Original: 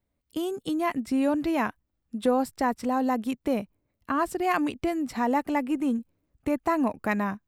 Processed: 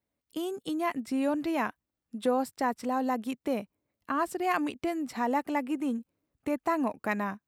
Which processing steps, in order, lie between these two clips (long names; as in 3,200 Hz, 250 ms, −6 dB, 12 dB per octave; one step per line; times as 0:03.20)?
high-pass filter 210 Hz 6 dB per octave
level −2.5 dB